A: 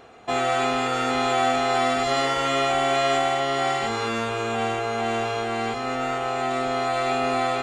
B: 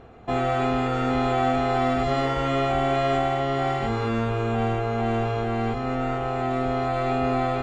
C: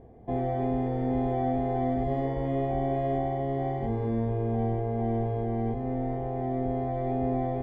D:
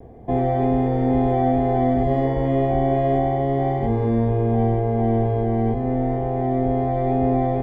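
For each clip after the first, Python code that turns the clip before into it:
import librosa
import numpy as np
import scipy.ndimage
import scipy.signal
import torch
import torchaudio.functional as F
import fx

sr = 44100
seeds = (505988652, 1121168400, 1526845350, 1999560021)

y1 = fx.riaa(x, sr, side='playback')
y1 = y1 * 10.0 ** (-2.5 / 20.0)
y2 = scipy.signal.lfilter(np.full(33, 1.0 / 33), 1.0, y1)
y2 = y2 * 10.0 ** (-2.0 / 20.0)
y3 = fx.vibrato(y2, sr, rate_hz=0.31, depth_cents=12.0)
y3 = y3 * 10.0 ** (8.5 / 20.0)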